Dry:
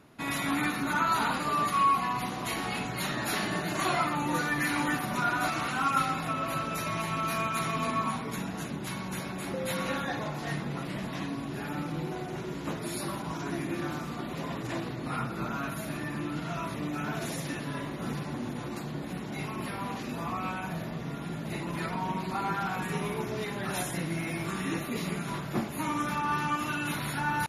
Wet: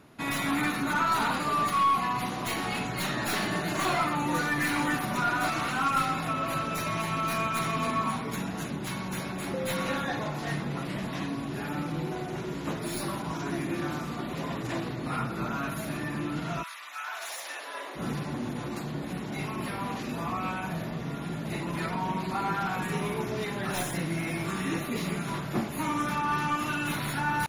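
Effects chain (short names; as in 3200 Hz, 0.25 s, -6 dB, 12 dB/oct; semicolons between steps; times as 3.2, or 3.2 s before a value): tracing distortion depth 0.034 ms; soft clip -19 dBFS, distortion -23 dB; 16.62–17.95 HPF 1300 Hz -> 420 Hz 24 dB/oct; gain +2 dB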